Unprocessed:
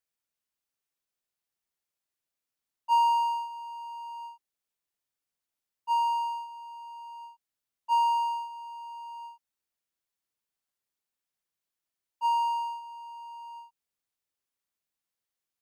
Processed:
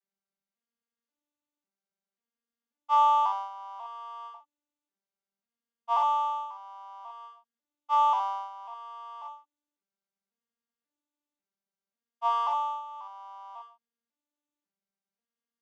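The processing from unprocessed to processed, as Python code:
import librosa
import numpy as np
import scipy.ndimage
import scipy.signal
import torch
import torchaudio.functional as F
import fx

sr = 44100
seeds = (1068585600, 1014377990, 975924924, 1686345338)

y = fx.vocoder_arp(x, sr, chord='minor triad', root=55, every_ms=542)
y = fx.room_early_taps(y, sr, ms=(41, 65), db=(-12.0, -6.5))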